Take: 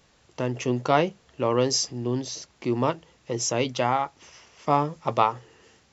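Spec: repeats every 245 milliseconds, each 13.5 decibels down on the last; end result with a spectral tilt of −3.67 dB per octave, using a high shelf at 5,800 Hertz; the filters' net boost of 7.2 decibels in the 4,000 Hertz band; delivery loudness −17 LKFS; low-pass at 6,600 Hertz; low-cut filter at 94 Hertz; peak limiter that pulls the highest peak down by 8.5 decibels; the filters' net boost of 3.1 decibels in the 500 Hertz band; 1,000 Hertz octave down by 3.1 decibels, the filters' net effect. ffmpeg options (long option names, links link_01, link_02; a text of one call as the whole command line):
ffmpeg -i in.wav -af "highpass=94,lowpass=6600,equalizer=frequency=500:width_type=o:gain=5.5,equalizer=frequency=1000:width_type=o:gain=-7,equalizer=frequency=4000:width_type=o:gain=8.5,highshelf=frequency=5800:gain=6.5,alimiter=limit=-13.5dB:level=0:latency=1,aecho=1:1:245|490:0.211|0.0444,volume=9.5dB" out.wav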